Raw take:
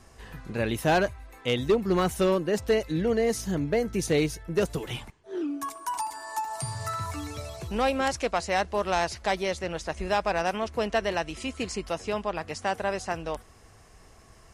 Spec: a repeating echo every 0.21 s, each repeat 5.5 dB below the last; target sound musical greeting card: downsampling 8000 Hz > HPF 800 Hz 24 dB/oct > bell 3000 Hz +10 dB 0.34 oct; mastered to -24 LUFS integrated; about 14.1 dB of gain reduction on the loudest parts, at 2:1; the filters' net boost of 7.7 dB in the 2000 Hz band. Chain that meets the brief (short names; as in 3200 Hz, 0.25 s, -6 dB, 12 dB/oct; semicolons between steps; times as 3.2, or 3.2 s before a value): bell 2000 Hz +8 dB; compressor 2:1, threshold -45 dBFS; feedback echo 0.21 s, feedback 53%, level -5.5 dB; downsampling 8000 Hz; HPF 800 Hz 24 dB/oct; bell 3000 Hz +10 dB 0.34 oct; gain +15 dB